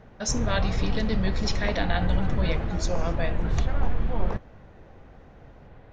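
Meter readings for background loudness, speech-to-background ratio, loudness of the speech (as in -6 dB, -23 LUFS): -30.0 LUFS, -0.5 dB, -30.5 LUFS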